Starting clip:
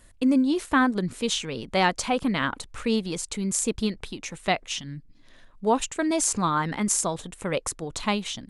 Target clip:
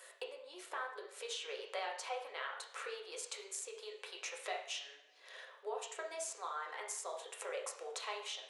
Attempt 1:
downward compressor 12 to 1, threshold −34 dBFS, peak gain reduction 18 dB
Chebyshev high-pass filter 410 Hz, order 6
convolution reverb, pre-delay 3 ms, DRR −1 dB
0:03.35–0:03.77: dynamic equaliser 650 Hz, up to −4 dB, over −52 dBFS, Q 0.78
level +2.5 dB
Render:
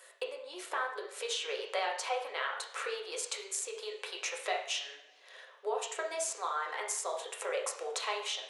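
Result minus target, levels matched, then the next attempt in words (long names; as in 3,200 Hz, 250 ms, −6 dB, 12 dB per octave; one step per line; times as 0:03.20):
downward compressor: peak gain reduction −7.5 dB
downward compressor 12 to 1, threshold −42 dBFS, peak gain reduction 25.5 dB
Chebyshev high-pass filter 410 Hz, order 6
convolution reverb, pre-delay 3 ms, DRR −1 dB
0:03.35–0:03.77: dynamic equaliser 650 Hz, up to −4 dB, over −52 dBFS, Q 0.78
level +2.5 dB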